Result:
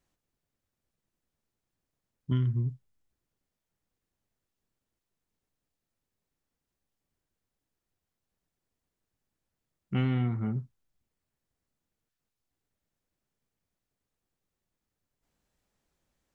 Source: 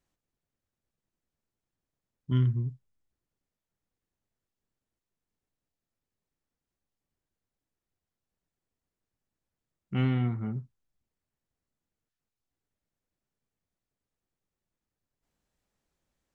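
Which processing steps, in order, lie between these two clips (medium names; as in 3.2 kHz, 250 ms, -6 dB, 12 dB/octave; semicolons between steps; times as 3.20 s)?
compression, threshold -26 dBFS, peak gain reduction 6 dB; trim +2.5 dB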